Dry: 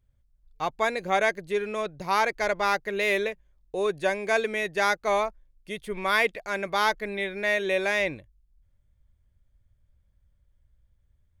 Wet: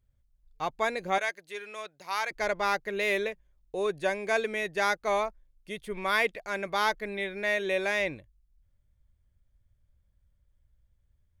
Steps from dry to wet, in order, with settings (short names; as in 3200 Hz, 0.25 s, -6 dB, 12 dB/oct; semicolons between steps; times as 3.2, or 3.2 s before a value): 1.18–2.31 HPF 1500 Hz 6 dB/oct; gain -3 dB